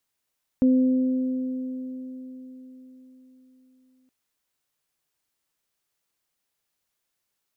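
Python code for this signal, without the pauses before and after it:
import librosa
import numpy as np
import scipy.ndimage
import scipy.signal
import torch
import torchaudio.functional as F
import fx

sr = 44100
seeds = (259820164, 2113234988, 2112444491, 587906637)

y = fx.additive(sr, length_s=3.47, hz=257.0, level_db=-14.5, upper_db=(-13,), decay_s=4.47, upper_decays_s=(3.87,))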